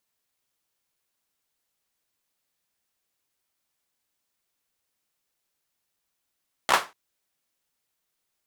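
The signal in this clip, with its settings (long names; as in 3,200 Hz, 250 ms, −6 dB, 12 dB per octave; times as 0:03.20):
synth clap length 0.24 s, apart 15 ms, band 1,000 Hz, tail 0.25 s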